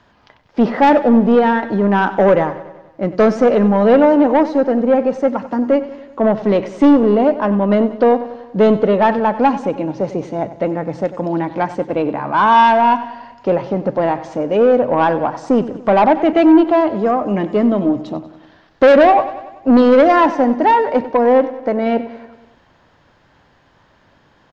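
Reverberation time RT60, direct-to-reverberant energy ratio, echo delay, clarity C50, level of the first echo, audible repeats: none, none, 95 ms, none, -15.0 dB, 5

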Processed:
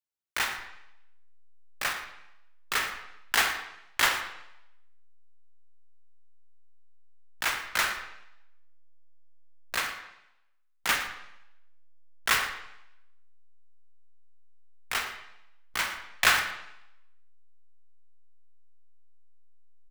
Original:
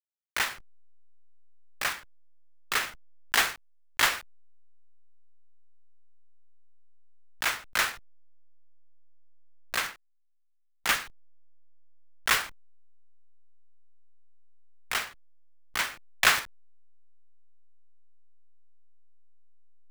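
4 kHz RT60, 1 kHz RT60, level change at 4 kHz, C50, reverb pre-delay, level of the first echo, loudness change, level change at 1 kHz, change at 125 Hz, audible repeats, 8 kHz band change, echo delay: 0.80 s, 0.85 s, 0.0 dB, 7.5 dB, 19 ms, -16.5 dB, -0.5 dB, +0.5 dB, +0.5 dB, 1, -1.0 dB, 0.115 s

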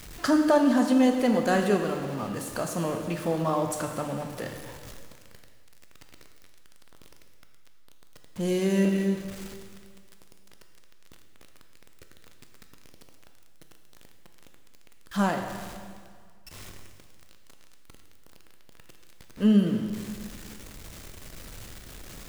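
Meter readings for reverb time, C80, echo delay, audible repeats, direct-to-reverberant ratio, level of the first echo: 2.0 s, 6.5 dB, none, none, 4.0 dB, none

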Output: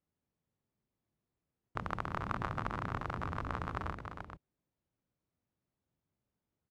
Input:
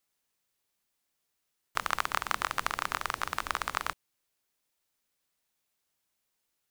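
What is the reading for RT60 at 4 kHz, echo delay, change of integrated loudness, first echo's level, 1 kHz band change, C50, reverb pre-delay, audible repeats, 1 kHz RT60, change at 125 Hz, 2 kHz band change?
none, 0.308 s, -7.0 dB, -7.0 dB, -6.5 dB, none, none, 2, none, +11.5 dB, -10.0 dB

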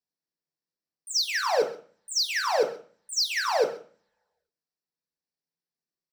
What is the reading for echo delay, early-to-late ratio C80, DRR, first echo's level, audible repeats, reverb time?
0.131 s, 13.0 dB, 2.0 dB, -18.5 dB, 1, 0.45 s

